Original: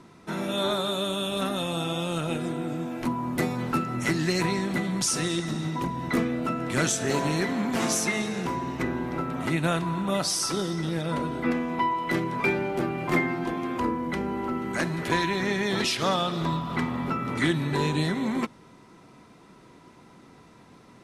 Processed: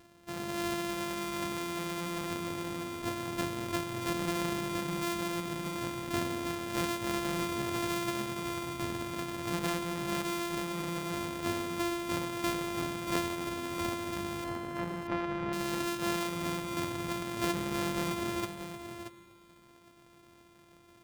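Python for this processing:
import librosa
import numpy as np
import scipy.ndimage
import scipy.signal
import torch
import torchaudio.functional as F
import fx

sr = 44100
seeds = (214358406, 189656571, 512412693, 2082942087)

y = np.r_[np.sort(x[:len(x) // 128 * 128].reshape(-1, 128), axis=1).ravel(), x[len(x) // 128 * 128:]]
y = fx.lowpass(y, sr, hz=2000.0, slope=12, at=(14.44, 15.53))
y = y + 10.0 ** (-9.5 / 20.0) * np.pad(y, (int(629 * sr / 1000.0), 0))[:len(y)]
y = fx.rev_plate(y, sr, seeds[0], rt60_s=2.5, hf_ratio=1.0, predelay_ms=75, drr_db=17.0)
y = y * librosa.db_to_amplitude(-8.0)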